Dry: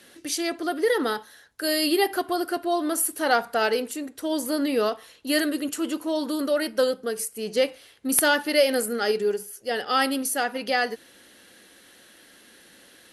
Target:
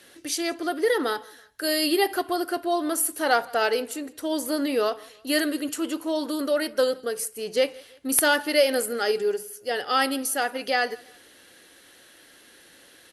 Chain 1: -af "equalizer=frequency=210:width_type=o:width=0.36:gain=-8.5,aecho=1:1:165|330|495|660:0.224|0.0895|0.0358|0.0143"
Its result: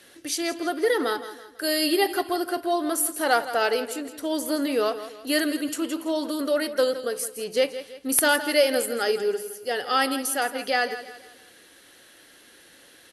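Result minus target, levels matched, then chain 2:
echo-to-direct +11.5 dB
-af "equalizer=frequency=210:width_type=o:width=0.36:gain=-8.5,aecho=1:1:165|330:0.0596|0.0238"

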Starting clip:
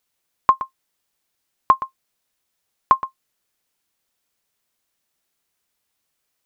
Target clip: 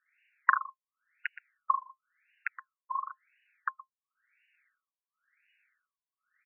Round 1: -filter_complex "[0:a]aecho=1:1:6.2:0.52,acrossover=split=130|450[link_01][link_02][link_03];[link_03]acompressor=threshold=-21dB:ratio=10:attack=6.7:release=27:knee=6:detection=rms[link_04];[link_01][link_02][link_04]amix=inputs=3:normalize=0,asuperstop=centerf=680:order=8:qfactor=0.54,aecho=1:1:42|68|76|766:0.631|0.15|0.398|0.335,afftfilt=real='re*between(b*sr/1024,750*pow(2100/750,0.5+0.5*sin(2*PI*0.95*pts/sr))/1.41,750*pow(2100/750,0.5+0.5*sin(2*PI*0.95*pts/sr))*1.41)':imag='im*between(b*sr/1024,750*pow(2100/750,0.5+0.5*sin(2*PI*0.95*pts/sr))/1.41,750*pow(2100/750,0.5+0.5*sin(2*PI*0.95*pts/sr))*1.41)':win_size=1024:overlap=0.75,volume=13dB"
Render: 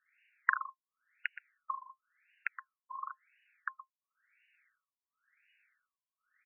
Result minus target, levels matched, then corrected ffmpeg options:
downward compressor: peak gain reduction +13.5 dB
-af "asuperstop=centerf=680:order=8:qfactor=0.54,aecho=1:1:6.2:0.52,aecho=1:1:42|68|76|766:0.631|0.15|0.398|0.335,afftfilt=real='re*between(b*sr/1024,750*pow(2100/750,0.5+0.5*sin(2*PI*0.95*pts/sr))/1.41,750*pow(2100/750,0.5+0.5*sin(2*PI*0.95*pts/sr))*1.41)':imag='im*between(b*sr/1024,750*pow(2100/750,0.5+0.5*sin(2*PI*0.95*pts/sr))/1.41,750*pow(2100/750,0.5+0.5*sin(2*PI*0.95*pts/sr))*1.41)':win_size=1024:overlap=0.75,volume=13dB"

